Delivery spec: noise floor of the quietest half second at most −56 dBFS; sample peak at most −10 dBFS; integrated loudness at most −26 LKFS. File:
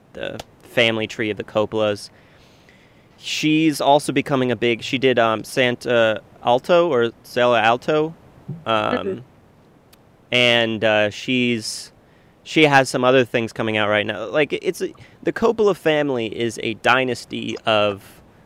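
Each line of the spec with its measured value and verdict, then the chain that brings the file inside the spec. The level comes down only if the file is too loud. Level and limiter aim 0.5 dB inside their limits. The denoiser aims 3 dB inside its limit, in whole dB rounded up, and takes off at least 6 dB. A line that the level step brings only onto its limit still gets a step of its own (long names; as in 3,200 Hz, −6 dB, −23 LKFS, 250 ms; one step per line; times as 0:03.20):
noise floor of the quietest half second −52 dBFS: out of spec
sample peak −2.0 dBFS: out of spec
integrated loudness −19.0 LKFS: out of spec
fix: level −7.5 dB
brickwall limiter −10.5 dBFS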